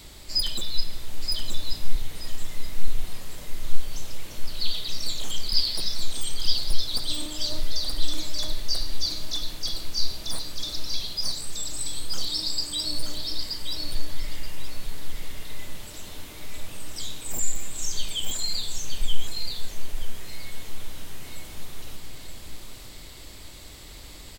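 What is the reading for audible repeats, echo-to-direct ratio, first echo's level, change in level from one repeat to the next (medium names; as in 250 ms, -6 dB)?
3, -4.0 dB, -4.0 dB, -14.0 dB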